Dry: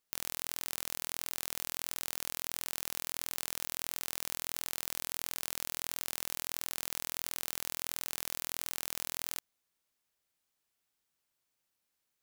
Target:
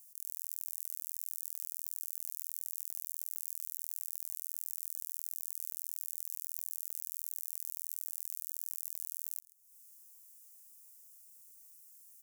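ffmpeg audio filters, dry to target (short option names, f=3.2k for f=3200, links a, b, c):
-filter_complex "[0:a]acompressor=threshold=-55dB:ratio=6,aeval=exprs='0.02*(abs(mod(val(0)/0.02+3,4)-2)-1)':c=same,aexciter=amount=8.1:drive=8.5:freq=5.6k,asplit=2[a][b];[b]adelay=134.1,volume=-18dB,highshelf=f=4k:g=-3.02[c];[a][c]amix=inputs=2:normalize=0,volume=1dB"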